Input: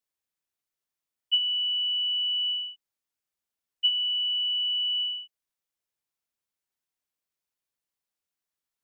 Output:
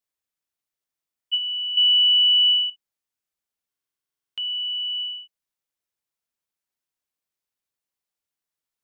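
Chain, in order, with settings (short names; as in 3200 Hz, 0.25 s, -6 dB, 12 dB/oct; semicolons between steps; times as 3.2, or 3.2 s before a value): 1.77–2.7 bell 2800 Hz +11.5 dB 0.67 oct; stuck buffer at 3.68, samples 2048, times 14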